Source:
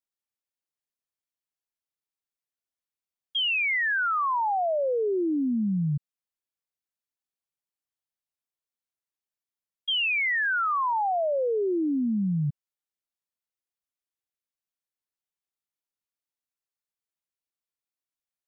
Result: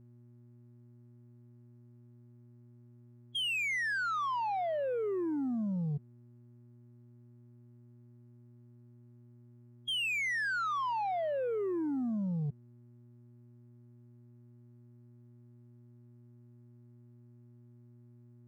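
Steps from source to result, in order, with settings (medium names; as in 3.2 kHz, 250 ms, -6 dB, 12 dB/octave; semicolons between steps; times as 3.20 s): spectral gate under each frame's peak -15 dB strong; mains buzz 120 Hz, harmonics 3, -52 dBFS -8 dB/octave; waveshaping leveller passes 1; trim -8.5 dB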